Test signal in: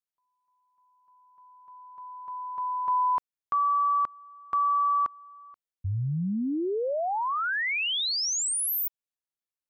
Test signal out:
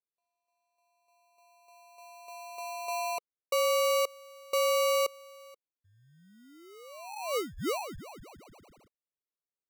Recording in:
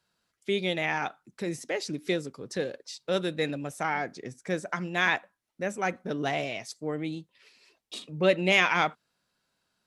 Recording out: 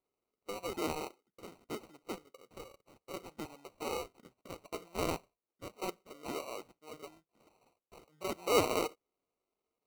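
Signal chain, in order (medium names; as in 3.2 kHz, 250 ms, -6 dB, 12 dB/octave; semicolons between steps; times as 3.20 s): two resonant band-passes 1.6 kHz, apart 0.78 oct; sample-and-hold 26×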